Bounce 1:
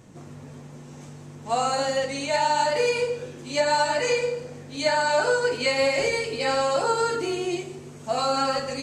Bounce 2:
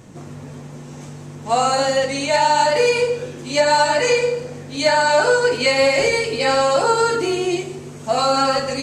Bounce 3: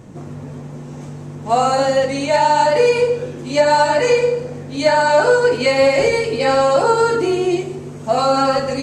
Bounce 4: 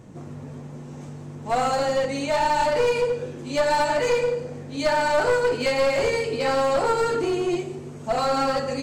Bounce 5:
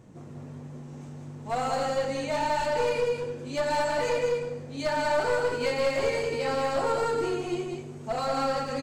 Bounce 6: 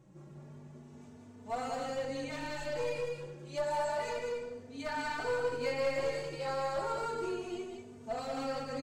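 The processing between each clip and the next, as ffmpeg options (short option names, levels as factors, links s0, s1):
-af "acontrast=79"
-af "tiltshelf=f=1500:g=4"
-af "aeval=exprs='clip(val(0),-1,0.188)':c=same,volume=0.501"
-af "aecho=1:1:192:0.596,volume=0.473"
-filter_complex "[0:a]asplit=2[s0][s1];[s1]adelay=3.2,afreqshift=0.31[s2];[s0][s2]amix=inputs=2:normalize=1,volume=0.531"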